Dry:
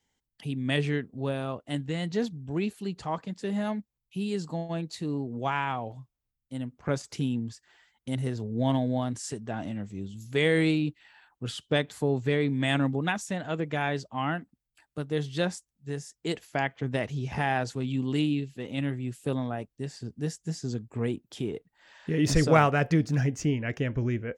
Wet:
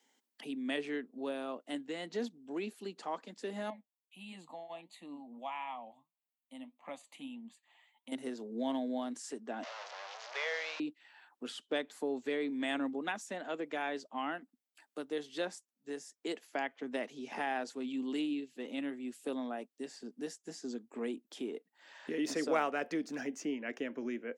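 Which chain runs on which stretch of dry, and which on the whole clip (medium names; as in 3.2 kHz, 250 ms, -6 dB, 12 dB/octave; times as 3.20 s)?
3.70–8.12 s: bass shelf 160 Hz -9.5 dB + flange 1.6 Hz, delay 4.3 ms, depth 4.8 ms, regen +76% + static phaser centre 1.5 kHz, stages 6
9.63–10.80 s: one-bit delta coder 32 kbps, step -30 dBFS + steep high-pass 550 Hz 48 dB/octave
whole clip: elliptic high-pass 240 Hz, stop band 80 dB; three bands compressed up and down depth 40%; trim -6.5 dB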